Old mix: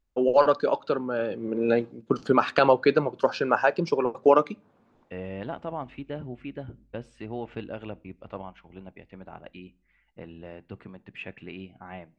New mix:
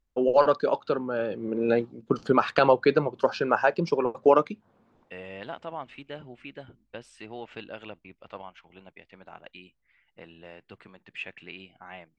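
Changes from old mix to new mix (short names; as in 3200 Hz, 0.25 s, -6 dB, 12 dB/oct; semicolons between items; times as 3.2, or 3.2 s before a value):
second voice: add tilt +3.5 dB/oct; reverb: off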